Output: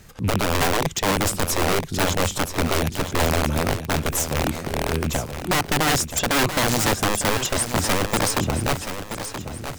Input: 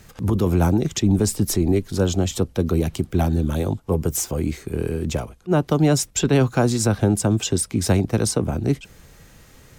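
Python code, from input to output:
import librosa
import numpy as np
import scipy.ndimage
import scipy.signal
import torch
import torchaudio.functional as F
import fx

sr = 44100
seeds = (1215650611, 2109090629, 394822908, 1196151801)

y = fx.rattle_buzz(x, sr, strikes_db=-21.0, level_db=-31.0)
y = (np.mod(10.0 ** (14.0 / 20.0) * y + 1.0, 2.0) - 1.0) / 10.0 ** (14.0 / 20.0)
y = fx.echo_feedback(y, sr, ms=977, feedback_pct=40, wet_db=-9.5)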